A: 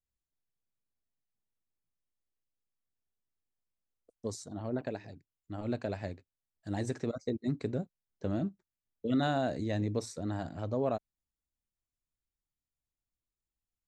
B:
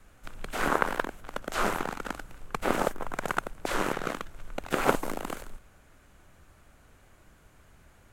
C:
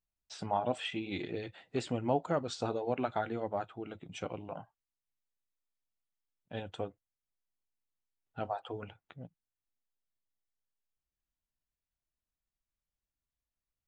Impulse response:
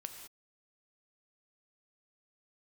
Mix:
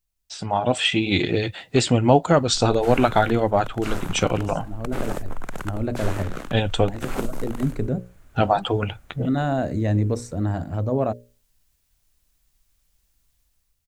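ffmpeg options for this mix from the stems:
-filter_complex "[0:a]equalizer=f=4.1k:w=1.5:g=-8,bandreject=f=60:t=h:w=6,bandreject=f=120:t=h:w=6,bandreject=f=180:t=h:w=6,bandreject=f=240:t=h:w=6,bandreject=f=300:t=h:w=6,bandreject=f=360:t=h:w=6,bandreject=f=420:t=h:w=6,bandreject=f=480:t=h:w=6,bandreject=f=540:t=h:w=6,bandreject=f=600:t=h:w=6,adelay=150,volume=-5.5dB[a];[1:a]acrossover=split=410|3000[b][c][d];[c]acompressor=threshold=-33dB:ratio=2.5[e];[b][e][d]amix=inputs=3:normalize=0,adelay=2300,volume=-15dB[f];[2:a]highshelf=f=2.8k:g=9.5,volume=3dB,asplit=2[g][h];[h]apad=whole_len=618334[i];[a][i]sidechaincompress=threshold=-38dB:ratio=8:attack=16:release=1110[j];[j][f][g]amix=inputs=3:normalize=0,lowshelf=f=120:g=11,dynaudnorm=f=200:g=7:m=13.5dB"

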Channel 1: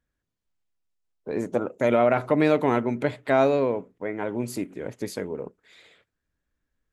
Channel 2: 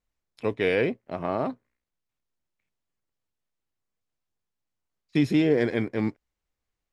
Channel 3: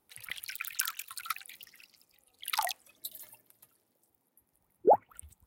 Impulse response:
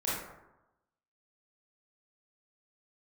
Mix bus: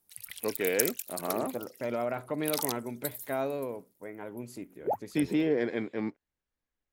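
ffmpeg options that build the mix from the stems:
-filter_complex "[0:a]volume=-12dB[a];[1:a]highpass=190,highshelf=f=6.6k:g=-11.5,volume=-5dB[b];[2:a]bass=f=250:g=7,treble=f=4k:g=14,volume=-9dB[c];[a][b][c]amix=inputs=3:normalize=0"

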